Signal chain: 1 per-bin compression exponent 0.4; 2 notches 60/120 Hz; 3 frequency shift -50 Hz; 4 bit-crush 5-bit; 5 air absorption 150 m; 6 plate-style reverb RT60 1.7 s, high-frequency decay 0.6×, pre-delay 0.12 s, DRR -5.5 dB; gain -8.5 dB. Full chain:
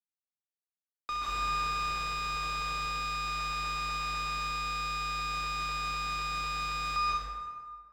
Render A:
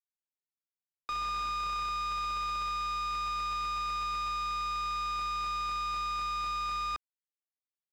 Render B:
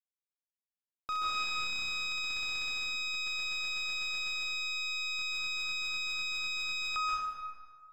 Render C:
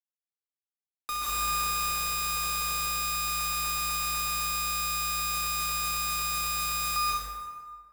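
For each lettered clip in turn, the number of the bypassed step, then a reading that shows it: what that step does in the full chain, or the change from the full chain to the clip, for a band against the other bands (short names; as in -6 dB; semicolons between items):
6, momentary loudness spread change -3 LU; 3, 1 kHz band -10.5 dB; 5, 8 kHz band +14.5 dB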